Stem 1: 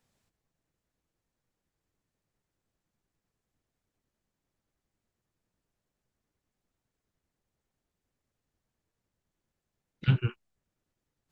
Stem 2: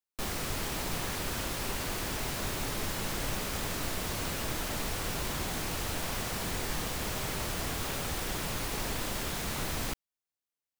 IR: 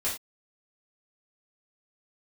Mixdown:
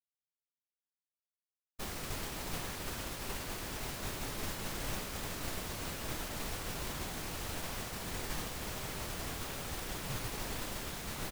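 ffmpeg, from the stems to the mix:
-filter_complex "[0:a]alimiter=limit=-20dB:level=0:latency=1,volume=-15.5dB[a];[1:a]adelay=1600,volume=-2dB[b];[a][b]amix=inputs=2:normalize=0,agate=range=-33dB:threshold=-31dB:ratio=3:detection=peak"

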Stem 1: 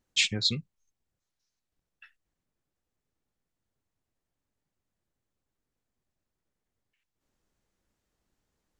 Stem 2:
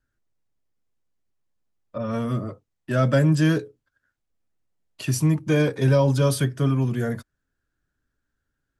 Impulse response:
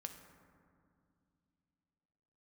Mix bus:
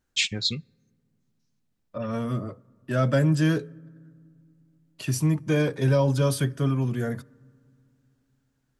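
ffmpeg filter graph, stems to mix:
-filter_complex "[0:a]volume=0dB,asplit=2[a][b];[b]volume=-20.5dB[c];[1:a]volume=-3.5dB,asplit=2[d][e];[e]volume=-15dB[f];[2:a]atrim=start_sample=2205[g];[c][f]amix=inputs=2:normalize=0[h];[h][g]afir=irnorm=-1:irlink=0[i];[a][d][i]amix=inputs=3:normalize=0"

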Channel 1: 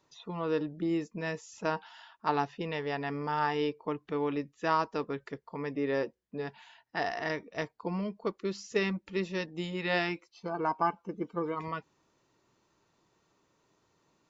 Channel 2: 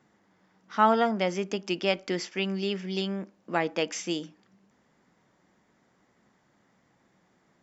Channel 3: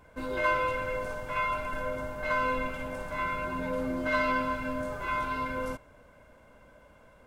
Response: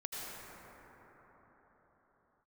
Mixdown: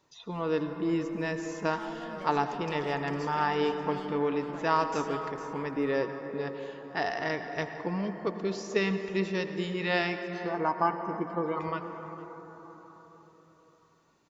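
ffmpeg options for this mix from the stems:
-filter_complex "[0:a]volume=-0.5dB,asplit=3[a][b][c];[b]volume=-6dB[d];[c]volume=-16.5dB[e];[1:a]asoftclip=type=tanh:threshold=-21.5dB,acompressor=threshold=-38dB:ratio=6,adelay=1000,volume=-5.5dB,asplit=2[f][g];[g]volume=-9.5dB[h];[2:a]alimiter=level_in=2dB:limit=-24dB:level=0:latency=1,volume=-2dB,adelay=150,volume=-20dB[i];[3:a]atrim=start_sample=2205[j];[d][j]afir=irnorm=-1:irlink=0[k];[e][h]amix=inputs=2:normalize=0,aecho=0:1:454:1[l];[a][f][i][k][l]amix=inputs=5:normalize=0"

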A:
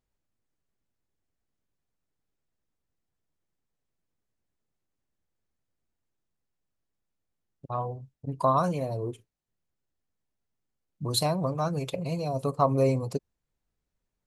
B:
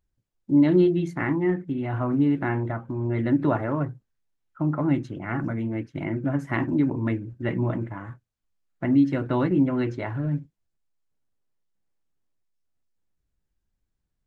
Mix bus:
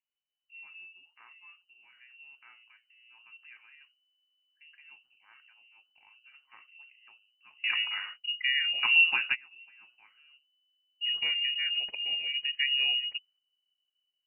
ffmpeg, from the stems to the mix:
-filter_complex "[0:a]asubboost=boost=7.5:cutoff=140,dynaudnorm=f=220:g=13:m=5dB,volume=-10dB,asplit=2[a][b];[1:a]agate=range=-6dB:threshold=-41dB:ratio=16:detection=peak,lowshelf=f=270:g=-7.5,volume=2.5dB[c];[b]apad=whole_len=629007[d];[c][d]sidechaingate=range=-29dB:threshold=-57dB:ratio=16:detection=peak[e];[a][e]amix=inputs=2:normalize=0,lowshelf=f=190:g=-7,lowpass=f=2.6k:t=q:w=0.5098,lowpass=f=2.6k:t=q:w=0.6013,lowpass=f=2.6k:t=q:w=0.9,lowpass=f=2.6k:t=q:w=2.563,afreqshift=-3000"

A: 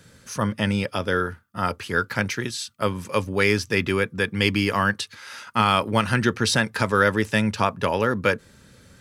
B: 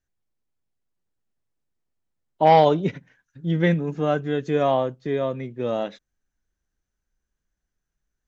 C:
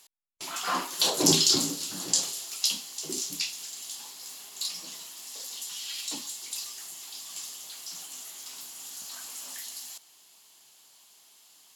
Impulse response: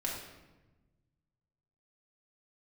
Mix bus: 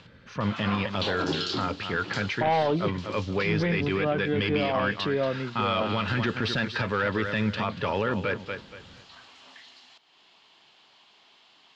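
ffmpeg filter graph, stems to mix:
-filter_complex "[0:a]adynamicequalizer=threshold=0.02:dfrequency=2700:dqfactor=0.7:tfrequency=2700:tqfactor=0.7:attack=5:release=100:ratio=0.375:range=3:mode=boostabove:tftype=highshelf,volume=-1dB,asplit=2[a][b];[b]volume=-13.5dB[c];[1:a]volume=-0.5dB,asplit=2[d][e];[2:a]acompressor=mode=upward:threshold=-40dB:ratio=2.5,volume=-1dB[f];[e]apad=whole_len=518403[g];[f][g]sidechaincompress=threshold=-25dB:ratio=8:attack=16:release=213[h];[a][d]amix=inputs=2:normalize=0,asoftclip=type=tanh:threshold=-12.5dB,alimiter=limit=-16.5dB:level=0:latency=1:release=18,volume=0dB[i];[c]aecho=0:1:235|470|705|940:1|0.27|0.0729|0.0197[j];[h][i][j]amix=inputs=3:normalize=0,lowpass=f=3.6k:w=0.5412,lowpass=f=3.6k:w=1.3066,alimiter=limit=-17.5dB:level=0:latency=1:release=73"

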